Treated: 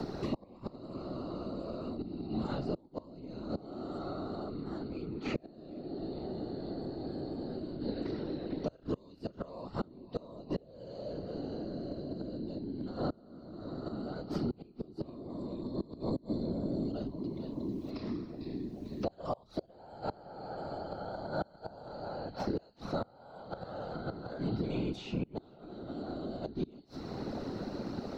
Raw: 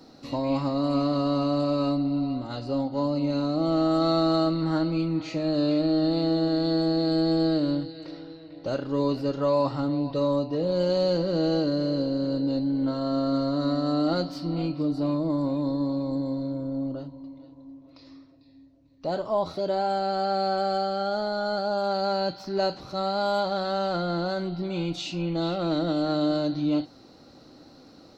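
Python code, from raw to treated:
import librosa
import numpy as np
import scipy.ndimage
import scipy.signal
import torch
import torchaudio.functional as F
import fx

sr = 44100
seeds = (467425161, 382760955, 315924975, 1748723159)

y = fx.whisperise(x, sr, seeds[0])
y = fx.gate_flip(y, sr, shuts_db=-18.0, range_db=-30)
y = fx.low_shelf(y, sr, hz=410.0, db=5.0)
y = fx.band_squash(y, sr, depth_pct=100)
y = y * 10.0 ** (-2.0 / 20.0)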